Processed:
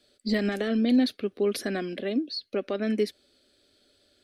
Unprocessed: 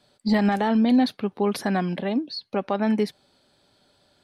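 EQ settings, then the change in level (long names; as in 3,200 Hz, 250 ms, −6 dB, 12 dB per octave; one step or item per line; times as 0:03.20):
phaser with its sweep stopped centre 370 Hz, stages 4
0.0 dB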